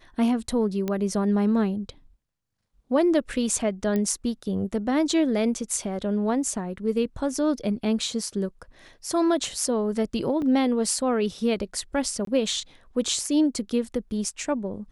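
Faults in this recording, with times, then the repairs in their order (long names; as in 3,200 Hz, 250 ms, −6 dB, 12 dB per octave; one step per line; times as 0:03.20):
0:00.88: click −15 dBFS
0:03.96: click −15 dBFS
0:10.42: drop-out 2.8 ms
0:12.25–0:12.27: drop-out 23 ms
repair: click removal
repair the gap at 0:10.42, 2.8 ms
repair the gap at 0:12.25, 23 ms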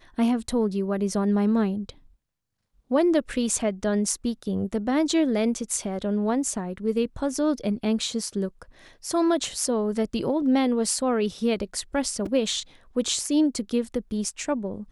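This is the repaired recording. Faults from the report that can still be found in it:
none of them is left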